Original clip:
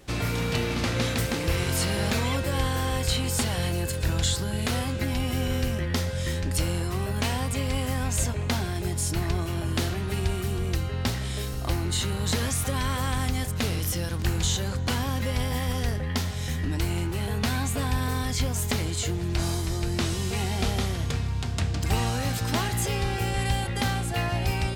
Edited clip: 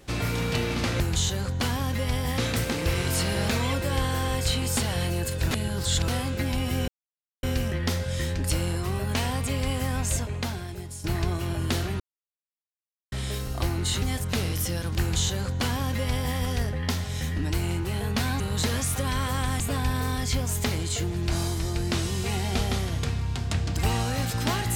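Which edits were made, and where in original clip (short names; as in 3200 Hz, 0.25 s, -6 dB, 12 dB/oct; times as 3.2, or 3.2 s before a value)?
4.13–4.7 reverse
5.5 insert silence 0.55 s
8.06–9.11 fade out, to -13.5 dB
10.07–11.19 mute
12.09–13.29 move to 17.67
14.27–15.65 copy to 1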